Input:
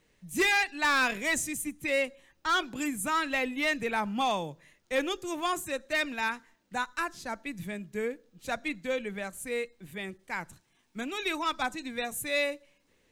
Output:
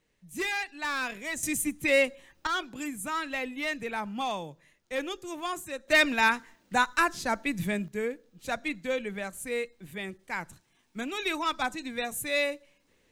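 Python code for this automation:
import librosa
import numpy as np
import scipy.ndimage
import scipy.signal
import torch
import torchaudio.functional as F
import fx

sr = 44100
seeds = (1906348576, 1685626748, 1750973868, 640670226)

y = fx.gain(x, sr, db=fx.steps((0.0, -6.0), (1.43, 5.0), (2.47, -3.5), (5.88, 7.5), (7.88, 1.0)))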